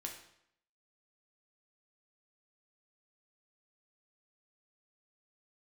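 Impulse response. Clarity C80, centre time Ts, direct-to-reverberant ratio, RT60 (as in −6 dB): 10.0 dB, 26 ms, 1.0 dB, 0.70 s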